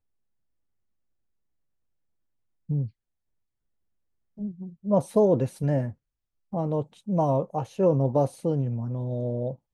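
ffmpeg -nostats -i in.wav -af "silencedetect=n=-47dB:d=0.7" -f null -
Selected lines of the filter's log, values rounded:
silence_start: 0.00
silence_end: 2.69 | silence_duration: 2.69
silence_start: 2.89
silence_end: 4.37 | silence_duration: 1.48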